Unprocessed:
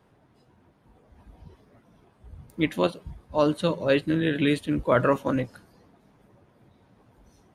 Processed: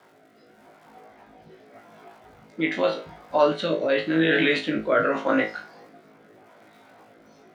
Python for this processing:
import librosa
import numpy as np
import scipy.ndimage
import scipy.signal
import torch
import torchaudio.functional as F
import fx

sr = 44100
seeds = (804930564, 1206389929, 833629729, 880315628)

p1 = fx.low_shelf(x, sr, hz=300.0, db=-6.0)
p2 = fx.over_compress(p1, sr, threshold_db=-29.0, ratio=-0.5)
p3 = p1 + (p2 * 10.0 ** (0.0 / 20.0))
p4 = fx.cabinet(p3, sr, low_hz=230.0, low_slope=12, high_hz=5700.0, hz=(720.0, 1400.0, 2100.0), db=(8, 7, 6))
p5 = fx.dmg_crackle(p4, sr, seeds[0], per_s=220.0, level_db=-50.0)
p6 = p5 + fx.room_flutter(p5, sr, wall_m=3.2, rt60_s=0.28, dry=0)
y = fx.rotary(p6, sr, hz=0.85)